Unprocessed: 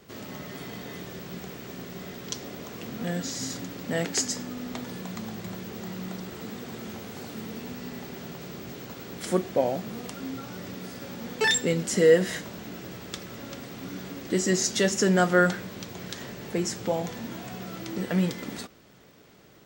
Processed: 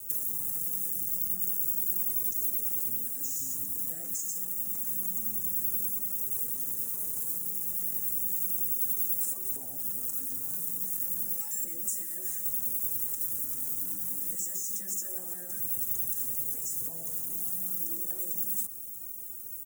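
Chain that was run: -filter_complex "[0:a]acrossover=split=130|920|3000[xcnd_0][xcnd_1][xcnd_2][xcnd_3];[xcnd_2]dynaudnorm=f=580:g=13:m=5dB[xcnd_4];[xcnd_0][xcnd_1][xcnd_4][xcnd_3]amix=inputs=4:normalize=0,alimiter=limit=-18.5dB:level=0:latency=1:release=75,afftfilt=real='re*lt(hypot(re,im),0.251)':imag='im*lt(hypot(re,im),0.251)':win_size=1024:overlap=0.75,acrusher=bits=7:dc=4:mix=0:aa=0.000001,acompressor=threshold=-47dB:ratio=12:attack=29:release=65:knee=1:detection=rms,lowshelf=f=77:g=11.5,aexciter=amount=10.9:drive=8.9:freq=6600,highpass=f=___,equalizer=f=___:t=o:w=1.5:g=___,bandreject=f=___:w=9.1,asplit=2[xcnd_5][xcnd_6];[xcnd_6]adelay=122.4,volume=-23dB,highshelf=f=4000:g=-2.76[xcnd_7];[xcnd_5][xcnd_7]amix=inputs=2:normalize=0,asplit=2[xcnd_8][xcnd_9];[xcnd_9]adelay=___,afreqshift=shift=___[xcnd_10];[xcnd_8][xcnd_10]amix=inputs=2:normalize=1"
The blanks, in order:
49, 2900, -12.5, 820, 4.4, 0.3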